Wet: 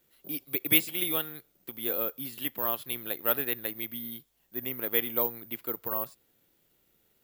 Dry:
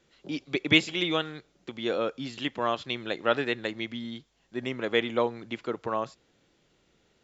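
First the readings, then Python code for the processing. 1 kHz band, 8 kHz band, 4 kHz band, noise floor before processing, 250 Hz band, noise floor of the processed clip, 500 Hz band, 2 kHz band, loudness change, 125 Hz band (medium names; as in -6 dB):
-7.0 dB, no reading, -6.0 dB, -69 dBFS, -7.0 dB, -70 dBFS, -7.0 dB, -6.5 dB, 0.0 dB, -7.0 dB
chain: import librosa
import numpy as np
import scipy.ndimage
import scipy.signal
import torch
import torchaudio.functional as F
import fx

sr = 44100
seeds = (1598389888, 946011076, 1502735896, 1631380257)

y = fx.high_shelf(x, sr, hz=6000.0, db=3.5)
y = (np.kron(y[::3], np.eye(3)[0]) * 3)[:len(y)]
y = y * 10.0 ** (-7.0 / 20.0)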